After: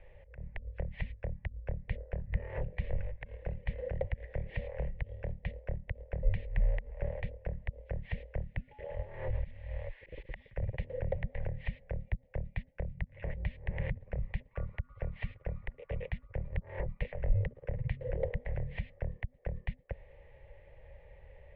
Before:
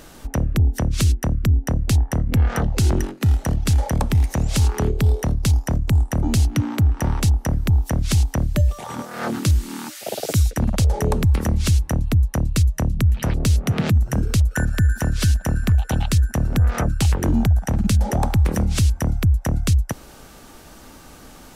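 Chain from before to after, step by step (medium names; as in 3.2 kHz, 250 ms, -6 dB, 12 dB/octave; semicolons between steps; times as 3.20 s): slow attack 110 ms; vowel filter u; mistuned SSB -330 Hz 170–3400 Hz; trim +2.5 dB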